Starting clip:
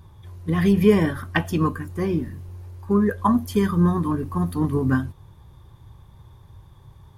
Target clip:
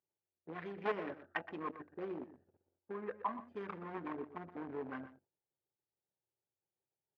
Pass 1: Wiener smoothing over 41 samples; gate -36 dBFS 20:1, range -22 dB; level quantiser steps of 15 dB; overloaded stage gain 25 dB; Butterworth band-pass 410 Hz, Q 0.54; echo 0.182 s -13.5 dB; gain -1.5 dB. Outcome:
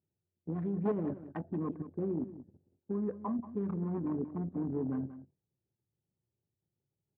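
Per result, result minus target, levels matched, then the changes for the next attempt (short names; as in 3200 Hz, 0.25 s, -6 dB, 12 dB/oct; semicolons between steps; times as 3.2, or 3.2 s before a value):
1000 Hz band -11.0 dB; echo 60 ms late
change: Butterworth band-pass 1100 Hz, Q 0.54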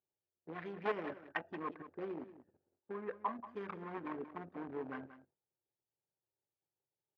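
echo 60 ms late
change: echo 0.122 s -13.5 dB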